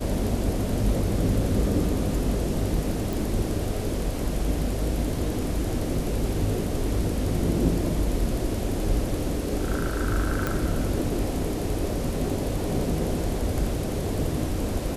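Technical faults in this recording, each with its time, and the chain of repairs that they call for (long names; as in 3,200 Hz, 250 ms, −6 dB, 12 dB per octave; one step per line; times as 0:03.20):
0:03.13: click
0:10.47: click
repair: click removal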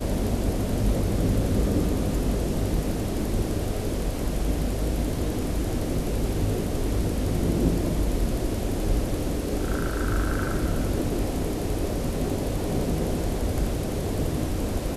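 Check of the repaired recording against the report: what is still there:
none of them is left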